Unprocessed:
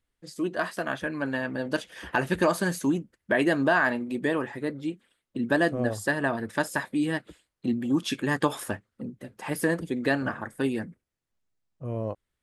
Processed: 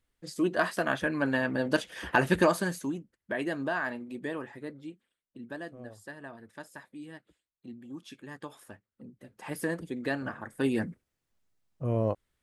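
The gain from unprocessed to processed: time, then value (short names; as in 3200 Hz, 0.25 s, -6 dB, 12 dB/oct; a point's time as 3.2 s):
2.36 s +1.5 dB
2.93 s -9 dB
4.58 s -9 dB
5.71 s -18 dB
8.62 s -18 dB
9.44 s -6.5 dB
10.4 s -6.5 dB
10.86 s +3.5 dB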